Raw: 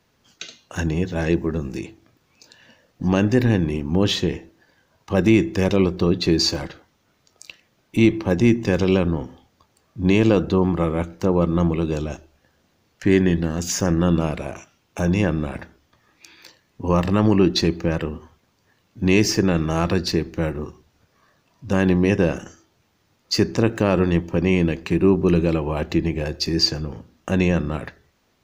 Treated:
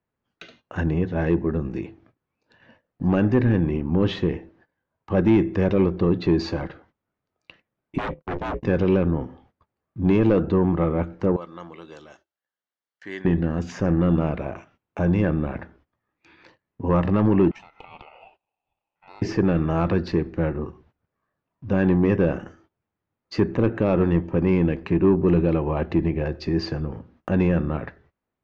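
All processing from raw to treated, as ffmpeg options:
-filter_complex "[0:a]asettb=1/sr,asplit=3[a][b][c];[a]atrim=end=7.984[d];[b]atrim=start=7.98:end=8.63,asetpts=PTS-STARTPTS,afade=t=in:d=0.004:c=qsin,afade=t=out:st=0.646:d=0.004:c=qsin,agate=range=-56dB:threshold=-24dB:ratio=16:release=100:detection=peak,aeval=exprs='0.112*(abs(mod(val(0)/0.112+3,4)-2)-1)':c=same,aeval=exprs='val(0)*sin(2*PI*180*n/s)':c=same[e];[c]atrim=start=8.626[f];[d][e]acrossfade=d=0.004:c1=hsin:c2=qsin[g];[g][f]acrossfade=d=0.004:c1=qsin:c2=hsin,asettb=1/sr,asplit=3[h][i][j];[h]atrim=end=11.364[k];[i]atrim=start=11.36:end=13.25,asetpts=PTS-STARTPTS,afade=t=in:d=0.004:c=qsin,afade=t=out:st=1.886:d=0.004:c=qsin,aderivative,bandreject=f=2.5k:w=5.5,acontrast=62[l];[j]atrim=start=13.246[m];[k][l]acrossfade=d=0.004:c1=hsin:c2=qsin[n];[n][m]acrossfade=d=0.004:c1=qsin:c2=hsin,asettb=1/sr,asplit=3[o][p][q];[o]atrim=end=17.514[r];[p]atrim=start=17.51:end=19.22,asetpts=PTS-STARTPTS,afade=t=in:d=0.004:c=qsin,afade=t=out:st=1.706:d=0.004:c=qsin,acompressor=threshold=-31dB:ratio=8:attack=3.2:release=140:knee=1:detection=peak,highpass=f=870:t=q:w=5.3,aeval=exprs='val(0)*sin(2*PI*1700*n/s)':c=same[s];[q]atrim=start=19.216[t];[r][s]acrossfade=d=0.004:c1=hsin:c2=qsin[u];[u][t]acrossfade=d=0.004:c1=qsin:c2=hsin,asettb=1/sr,asplit=3[v][w][x];[v]atrim=end=23.404[y];[w]atrim=start=23.4:end=23.82,asetpts=PTS-STARTPTS,afade=t=in:d=0.004:c=qsin,afade=t=out:st=0.416:d=0.004:c=qsin,equalizer=f=5.1k:t=o:w=0.28:g=-14,acrossover=split=7900[z][aa];[aa]acompressor=threshold=-59dB:ratio=4:attack=1:release=60[ab];[z][ab]amix=inputs=2:normalize=0[ac];[x]atrim=start=23.816[ad];[y][ac]acrossfade=d=0.004:c1=hsin:c2=qsin[ae];[ae][ad]acrossfade=d=0.004:c1=qsin:c2=hsin,lowpass=1.9k,agate=range=-18dB:threshold=-55dB:ratio=16:detection=peak,acontrast=90,volume=-7dB"

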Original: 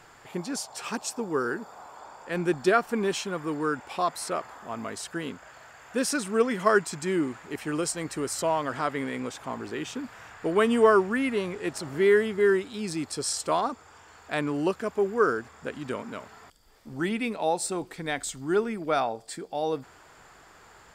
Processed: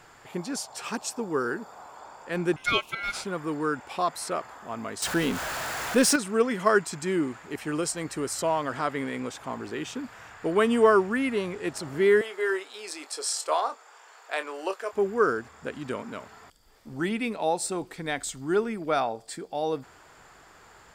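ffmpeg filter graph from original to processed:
-filter_complex "[0:a]asettb=1/sr,asplit=3[a][b][c];[a]atrim=end=2.564[d];[b]atrim=start=2.56:end=3.25,asetpts=PTS-STARTPTS,afade=t=in:d=0.004:c=qsin,afade=t=out:st=0.686:d=0.004:c=qsin,highpass=340,aeval=exprs='val(0)*sin(2*PI*1800*n/s)':c=same[e];[c]atrim=start=3.246[f];[d][e]acrossfade=d=0.004:c1=hsin:c2=qsin[g];[g][f]acrossfade=d=0.004:c1=qsin:c2=hsin,asettb=1/sr,asplit=3[h][i][j];[h]atrim=end=5.024[k];[i]atrim=start=5.02:end=6.16,asetpts=PTS-STARTPTS,afade=t=in:d=0.004:c=qsin,afade=t=out:st=1.136:d=0.004:c=qsin,aeval=exprs='val(0)+0.5*0.0211*sgn(val(0))':c=same,acontrast=28[l];[j]atrim=start=6.156[m];[k][l]acrossfade=d=0.004:c1=hsin:c2=qsin[n];[n][m]acrossfade=d=0.004:c1=qsin:c2=hsin,asettb=1/sr,asplit=3[o][p][q];[o]atrim=end=12.214[r];[p]atrim=start=12.21:end=14.93,asetpts=PTS-STARTPTS,afade=t=in:d=0.004:c=qsin,afade=t=out:st=2.716:d=0.004:c=qsin,highpass=f=460:w=0.5412,highpass=f=460:w=1.3066,asplit=2[s][t];[t]adelay=26,volume=-11dB[u];[s][u]amix=inputs=2:normalize=0,atrim=end_sample=119952[v];[q]atrim=start=14.926[w];[r][v]acrossfade=d=0.004:c1=hsin:c2=qsin[x];[x][w]acrossfade=d=0.004:c1=qsin:c2=hsin"

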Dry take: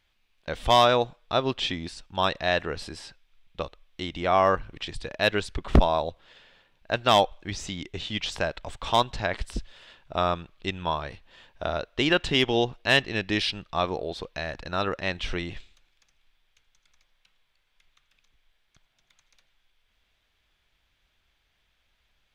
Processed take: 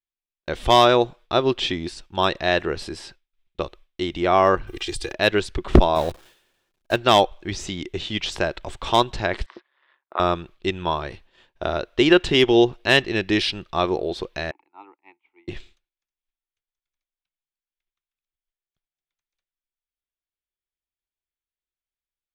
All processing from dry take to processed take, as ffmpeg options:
-filter_complex "[0:a]asettb=1/sr,asplit=3[a][b][c];[a]atrim=end=4.674[d];[b]atrim=start=4.67:end=5.13,asetpts=PTS-STARTPTS,afade=t=in:d=0.004:c=qsin,afade=t=out:st=0.456:d=0.004:c=qsin,aemphasis=mode=production:type=75kf,aecho=1:1:2.5:0.94,atrim=end_sample=20286,acompressor=threshold=-29dB:ratio=5:attack=3.2:release=140:knee=1:detection=peak[e];[c]atrim=start=5.126[f];[d][e]acrossfade=d=0.004:c1=hsin:c2=qsin[g];[g][f]acrossfade=d=0.004:c1=qsin:c2=hsin,asettb=1/sr,asplit=3[h][i][j];[h]atrim=end=5.954[k];[i]atrim=start=5.95:end=6.96,asetpts=PTS-STARTPTS,afade=t=in:d=0.004:c=qsin,afade=t=out:st=1.006:d=0.004:c=qsin,aeval=exprs='val(0)+0.5*0.0251*sgn(val(0))':c=same,agate=range=-33dB:threshold=-28dB:ratio=3:release=100:detection=peak,bandreject=f=2k:w=18[l];[j]atrim=start=6.956[m];[k][l]acrossfade=d=0.004:c1=hsin:c2=qsin[n];[n][m]acrossfade=d=0.004:c1=qsin:c2=hsin,asettb=1/sr,asplit=3[o][p][q];[o]atrim=end=9.464[r];[p]atrim=start=9.46:end=10.2,asetpts=PTS-STARTPTS,afade=t=in:d=0.004:c=qsin,afade=t=out:st=0.736:d=0.004:c=qsin,highpass=f=410:w=0.5412,highpass=f=410:w=1.3066,equalizer=f=440:t=q:w=4:g=-9,equalizer=f=640:t=q:w=4:g=-4,equalizer=f=1.1k:t=q:w=4:g=9,equalizer=f=1.9k:t=q:w=4:g=6,equalizer=f=2.8k:t=q:w=4:g=-8,lowpass=f=3.1k:w=0.5412,lowpass=f=3.1k:w=1.3066,tremolo=f=140:d=0.667[s];[q]atrim=start=10.196[t];[r][s]acrossfade=d=0.004:c1=hsin:c2=qsin[u];[u][t]acrossfade=d=0.004:c1=qsin:c2=hsin,asettb=1/sr,asplit=3[v][w][x];[v]atrim=end=14.514[y];[w]atrim=start=14.51:end=15.48,asetpts=PTS-STARTPTS,afade=t=in:d=0.004:c=qsin,afade=t=out:st=0.966:d=0.004:c=qsin,asplit=3[z][aa][ab];[z]bandpass=f=300:t=q:w=8,volume=0dB[ac];[aa]bandpass=f=870:t=q:w=8,volume=-6dB[ad];[ab]bandpass=f=2.24k:t=q:w=8,volume=-9dB[ae];[ac][ad][ae]amix=inputs=3:normalize=0,acrossover=split=560 2300:gain=0.0631 1 0.0891[af][ag][ah];[af][ag][ah]amix=inputs=3:normalize=0[ai];[x]atrim=start=15.476[aj];[y][ai]acrossfade=d=0.004:c1=hsin:c2=qsin[ak];[ak][aj]acrossfade=d=0.004:c1=qsin:c2=hsin,agate=range=-33dB:threshold=-45dB:ratio=3:detection=peak,equalizer=f=360:t=o:w=0.32:g=9.5,volume=3.5dB"

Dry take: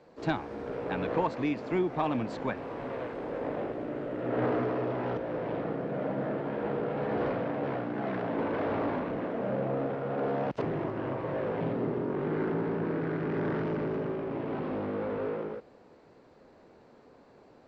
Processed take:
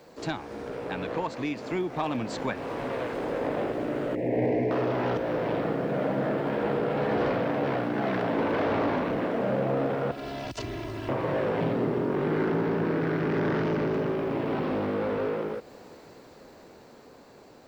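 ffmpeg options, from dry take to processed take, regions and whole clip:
-filter_complex "[0:a]asettb=1/sr,asplit=3[a][b][c];[a]atrim=end=4.154[d];[b]atrim=start=4.15:end=4.71,asetpts=PTS-STARTPTS,afade=t=in:d=0.004:c=qsin,afade=t=out:st=0.556:d=0.004:c=qsin,asuperstop=centerf=1300:order=4:qfactor=0.79,highshelf=f=2.6k:t=q:w=3:g=-7[e];[c]atrim=start=4.706[f];[d][e]acrossfade=d=0.004:c1=hsin:c2=qsin[g];[g][f]acrossfade=d=0.004:c1=qsin:c2=hsin,asettb=1/sr,asplit=3[h][i][j];[h]atrim=end=10.114[k];[i]atrim=start=10.11:end=11.09,asetpts=PTS-STARTPTS,afade=t=in:d=0.004:c=qsin,afade=t=out:st=0.976:d=0.004:c=qsin,bandreject=f=3.2k:w=28,aecho=1:1:3:0.87,atrim=end_sample=43218,acrossover=split=120|3000[l][m][n];[m]acompressor=threshold=-44dB:ratio=6:attack=3.2:release=140:knee=2.83:detection=peak[o];[l][o][n]amix=inputs=3:normalize=0[p];[j]atrim=start=11.086[q];[k][p]acrossfade=d=0.004:c1=hsin:c2=qsin[r];[r][q]acrossfade=d=0.004:c1=qsin:c2=hsin,acompressor=threshold=-46dB:ratio=1.5,aemphasis=mode=production:type=75fm,dynaudnorm=f=560:g=9:m=6dB,volume=5.5dB"

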